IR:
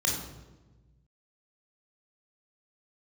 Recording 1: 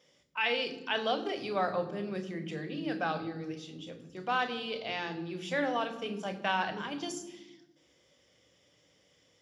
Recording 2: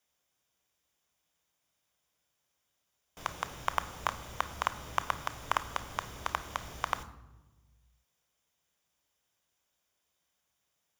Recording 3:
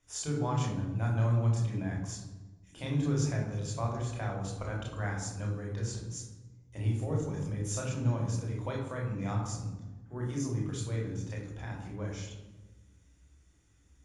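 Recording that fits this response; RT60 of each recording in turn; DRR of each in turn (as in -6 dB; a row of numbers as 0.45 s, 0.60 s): 3; 1.2 s, 1.2 s, 1.2 s; 7.5 dB, 12.0 dB, -2.0 dB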